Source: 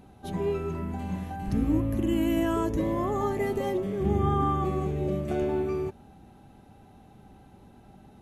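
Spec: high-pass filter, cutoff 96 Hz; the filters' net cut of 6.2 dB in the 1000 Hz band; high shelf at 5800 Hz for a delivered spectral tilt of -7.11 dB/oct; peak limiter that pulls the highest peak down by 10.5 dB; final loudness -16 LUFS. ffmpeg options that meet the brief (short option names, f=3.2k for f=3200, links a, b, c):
-af "highpass=96,equalizer=f=1k:t=o:g=-8,highshelf=f=5.8k:g=-6.5,volume=18.5dB,alimiter=limit=-8dB:level=0:latency=1"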